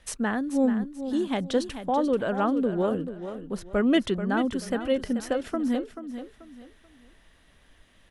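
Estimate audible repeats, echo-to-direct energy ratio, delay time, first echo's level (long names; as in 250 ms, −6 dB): 3, −10.0 dB, 435 ms, −10.5 dB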